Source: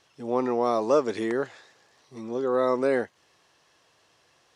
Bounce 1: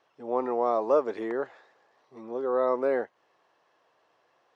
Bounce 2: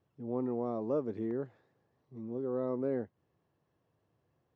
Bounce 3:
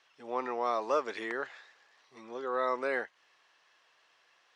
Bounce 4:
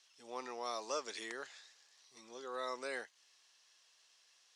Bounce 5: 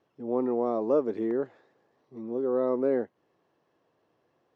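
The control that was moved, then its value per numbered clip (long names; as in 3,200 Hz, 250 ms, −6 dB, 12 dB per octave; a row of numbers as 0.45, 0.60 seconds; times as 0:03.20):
resonant band-pass, frequency: 740, 110, 1,900, 6,000, 290 Hertz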